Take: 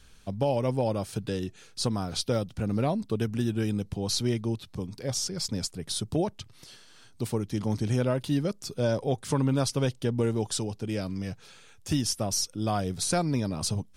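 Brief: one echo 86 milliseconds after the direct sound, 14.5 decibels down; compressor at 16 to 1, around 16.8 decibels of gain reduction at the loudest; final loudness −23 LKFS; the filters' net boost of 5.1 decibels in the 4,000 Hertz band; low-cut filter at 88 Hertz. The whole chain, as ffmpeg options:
ffmpeg -i in.wav -af "highpass=88,equalizer=frequency=4000:width_type=o:gain=6.5,acompressor=threshold=-38dB:ratio=16,aecho=1:1:86:0.188,volume=19.5dB" out.wav

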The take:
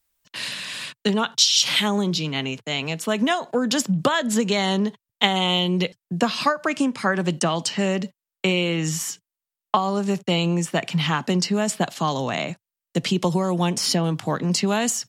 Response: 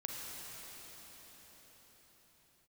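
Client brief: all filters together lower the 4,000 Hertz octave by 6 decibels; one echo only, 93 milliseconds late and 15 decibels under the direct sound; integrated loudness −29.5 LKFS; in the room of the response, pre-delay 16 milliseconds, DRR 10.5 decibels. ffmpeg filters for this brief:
-filter_complex "[0:a]equalizer=frequency=4000:width_type=o:gain=-8.5,aecho=1:1:93:0.178,asplit=2[link_01][link_02];[1:a]atrim=start_sample=2205,adelay=16[link_03];[link_02][link_03]afir=irnorm=-1:irlink=0,volume=-11.5dB[link_04];[link_01][link_04]amix=inputs=2:normalize=0,volume=-6dB"

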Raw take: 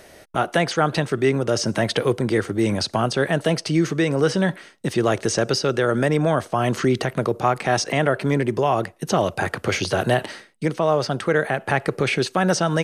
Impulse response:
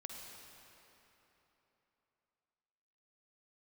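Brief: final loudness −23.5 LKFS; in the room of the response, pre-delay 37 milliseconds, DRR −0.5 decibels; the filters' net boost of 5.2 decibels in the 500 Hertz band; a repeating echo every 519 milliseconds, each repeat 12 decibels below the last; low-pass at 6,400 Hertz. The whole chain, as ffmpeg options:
-filter_complex "[0:a]lowpass=6400,equalizer=frequency=500:width_type=o:gain=6.5,aecho=1:1:519|1038|1557:0.251|0.0628|0.0157,asplit=2[link_01][link_02];[1:a]atrim=start_sample=2205,adelay=37[link_03];[link_02][link_03]afir=irnorm=-1:irlink=0,volume=3.5dB[link_04];[link_01][link_04]amix=inputs=2:normalize=0,volume=-8.5dB"

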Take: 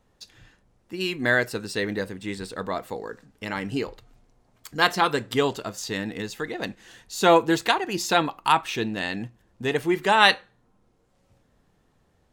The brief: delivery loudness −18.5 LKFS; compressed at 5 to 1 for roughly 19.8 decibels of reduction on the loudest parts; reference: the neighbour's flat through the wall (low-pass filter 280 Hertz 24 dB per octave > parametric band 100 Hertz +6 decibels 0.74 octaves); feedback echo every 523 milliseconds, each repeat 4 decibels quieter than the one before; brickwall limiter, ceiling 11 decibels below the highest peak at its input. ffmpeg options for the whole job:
ffmpeg -i in.wav -af "acompressor=threshold=-35dB:ratio=5,alimiter=level_in=5dB:limit=-24dB:level=0:latency=1,volume=-5dB,lowpass=frequency=280:width=0.5412,lowpass=frequency=280:width=1.3066,equalizer=frequency=100:width_type=o:width=0.74:gain=6,aecho=1:1:523|1046|1569|2092|2615|3138|3661|4184|4707:0.631|0.398|0.25|0.158|0.0994|0.0626|0.0394|0.0249|0.0157,volume=26dB" out.wav

